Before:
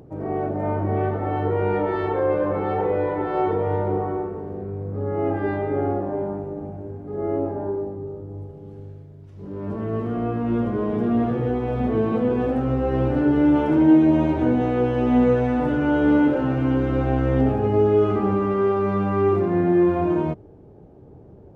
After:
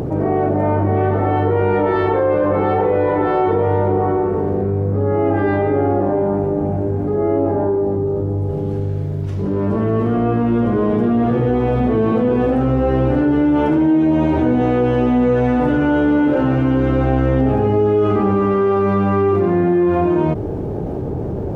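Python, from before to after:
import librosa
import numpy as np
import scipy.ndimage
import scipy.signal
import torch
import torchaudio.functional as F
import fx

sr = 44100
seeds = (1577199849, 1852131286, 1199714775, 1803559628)

y = fx.env_flatten(x, sr, amount_pct=70)
y = y * 10.0 ** (-1.5 / 20.0)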